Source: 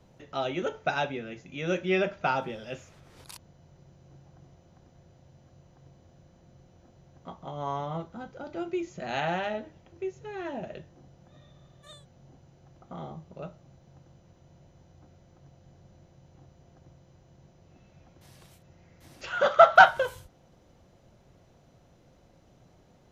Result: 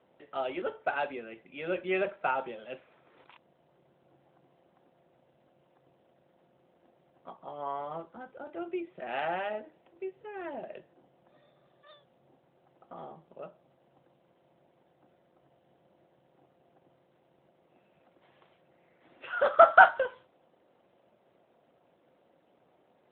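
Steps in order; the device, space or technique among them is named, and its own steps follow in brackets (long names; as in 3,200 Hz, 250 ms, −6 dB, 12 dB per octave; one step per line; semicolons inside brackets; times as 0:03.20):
telephone (band-pass filter 330–3,200 Hz; level −1.5 dB; AMR narrowband 12.2 kbit/s 8,000 Hz)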